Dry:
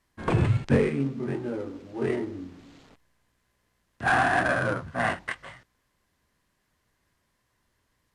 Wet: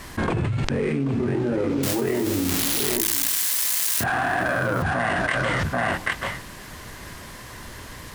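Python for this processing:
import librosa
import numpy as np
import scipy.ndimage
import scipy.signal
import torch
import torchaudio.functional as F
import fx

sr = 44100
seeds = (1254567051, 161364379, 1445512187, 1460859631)

y = fx.crossing_spikes(x, sr, level_db=-27.0, at=(1.83, 4.04))
y = y + 10.0 ** (-19.0 / 20.0) * np.pad(y, (int(785 * sr / 1000.0), 0))[:len(y)]
y = fx.env_flatten(y, sr, amount_pct=100)
y = F.gain(torch.from_numpy(y), -6.0).numpy()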